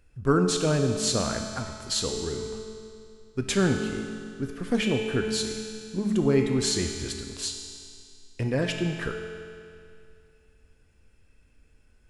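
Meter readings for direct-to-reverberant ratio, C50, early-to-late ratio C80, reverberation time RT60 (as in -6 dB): 2.5 dB, 4.0 dB, 5.0 dB, 2.4 s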